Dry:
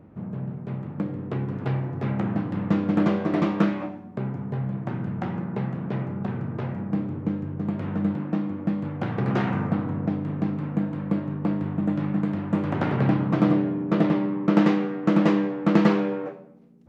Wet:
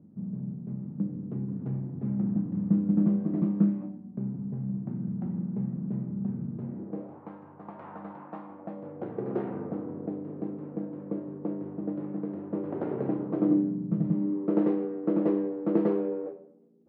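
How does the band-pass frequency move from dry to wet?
band-pass, Q 2.3
6.61 s 200 Hz
7.23 s 910 Hz
8.46 s 910 Hz
9.07 s 410 Hz
13.38 s 410 Hz
14.02 s 130 Hz
14.42 s 400 Hz

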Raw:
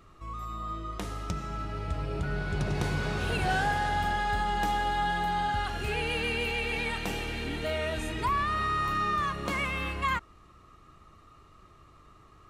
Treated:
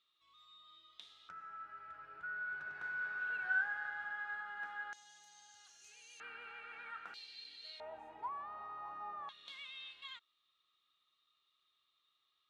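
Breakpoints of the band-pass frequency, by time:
band-pass, Q 10
3600 Hz
from 1.29 s 1500 Hz
from 4.93 s 6300 Hz
from 6.2 s 1400 Hz
from 7.14 s 4300 Hz
from 7.8 s 830 Hz
from 9.29 s 3600 Hz

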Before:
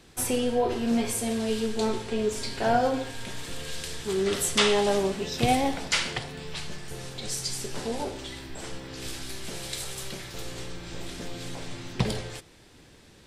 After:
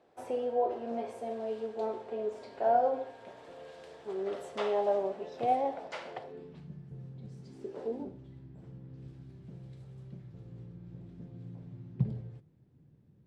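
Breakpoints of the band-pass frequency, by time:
band-pass, Q 2.5
6.2 s 630 Hz
6.71 s 150 Hz
7.31 s 150 Hz
7.82 s 520 Hz
8.18 s 140 Hz

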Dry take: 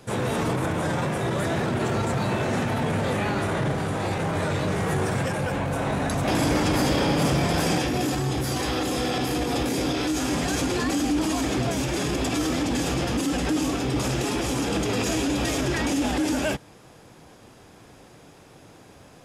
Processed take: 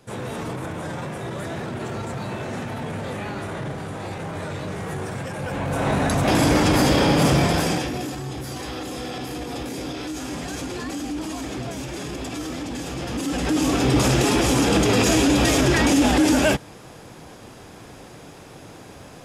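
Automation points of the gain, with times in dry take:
5.28 s -5 dB
5.89 s +4.5 dB
7.41 s +4.5 dB
8.14 s -5.5 dB
12.91 s -5.5 dB
13.86 s +7 dB

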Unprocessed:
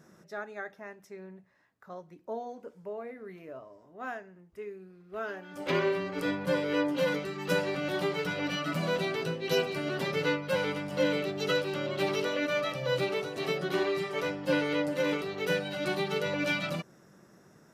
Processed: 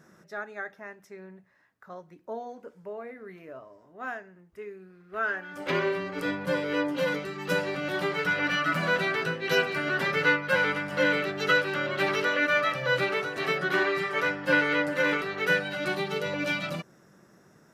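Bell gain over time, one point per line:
bell 1600 Hz 1.1 oct
4.67 s +4.5 dB
5.36 s +13.5 dB
5.74 s +4 dB
7.82 s +4 dB
8.4 s +13 dB
15.41 s +13 dB
16.15 s +2 dB

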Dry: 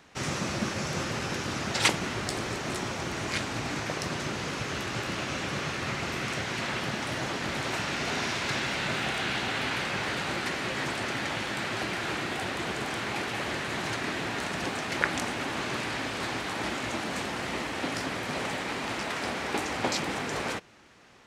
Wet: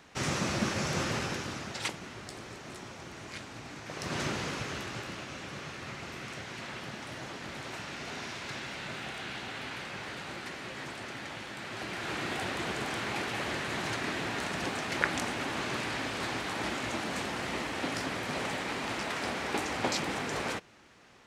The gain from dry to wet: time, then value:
1.15 s 0 dB
1.91 s -12 dB
3.82 s -12 dB
4.2 s +0.5 dB
5.29 s -9.5 dB
11.59 s -9.5 dB
12.28 s -2 dB

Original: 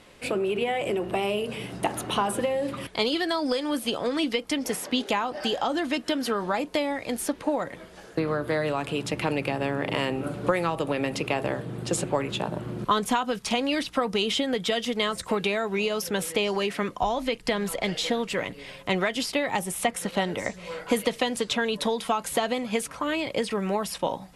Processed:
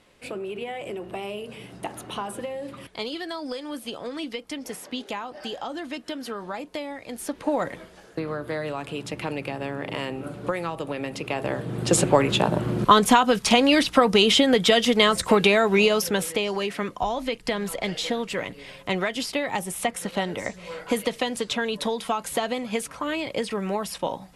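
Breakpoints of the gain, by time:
7.11 s -6.5 dB
7.66 s +4.5 dB
8.01 s -3.5 dB
11.2 s -3.5 dB
11.99 s +8 dB
15.84 s +8 dB
16.42 s -0.5 dB

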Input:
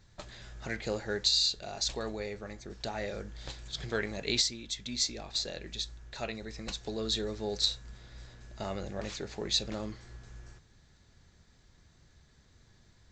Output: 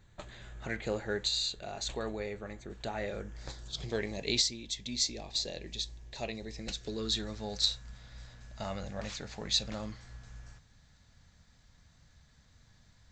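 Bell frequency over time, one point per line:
bell -13.5 dB 0.44 oct
3.19 s 5200 Hz
3.91 s 1400 Hz
6.52 s 1400 Hz
7.36 s 370 Hz

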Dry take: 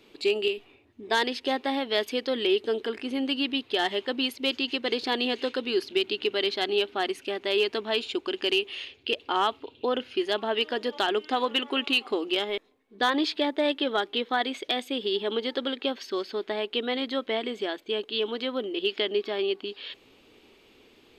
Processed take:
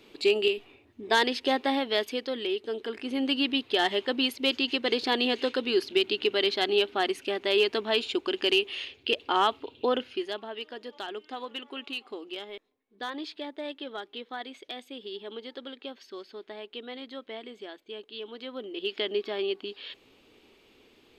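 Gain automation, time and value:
1.71 s +1.5 dB
2.59 s -7 dB
3.29 s +1 dB
9.92 s +1 dB
10.52 s -11.5 dB
18.25 s -11.5 dB
19.07 s -2.5 dB

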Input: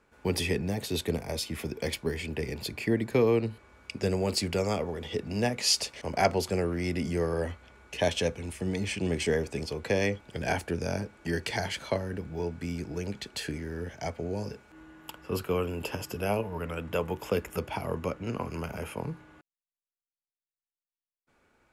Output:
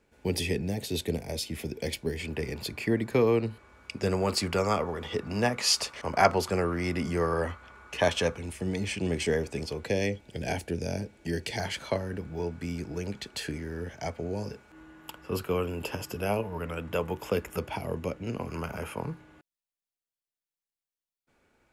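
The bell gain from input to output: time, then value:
bell 1200 Hz 0.88 oct
-9.5 dB
from 2.2 s +2.5 dB
from 4.07 s +10.5 dB
from 8.38 s -0.5 dB
from 9.86 s -11.5 dB
from 11.6 s +0.5 dB
from 17.76 s -6 dB
from 18.49 s +4 dB
from 19.14 s -3.5 dB

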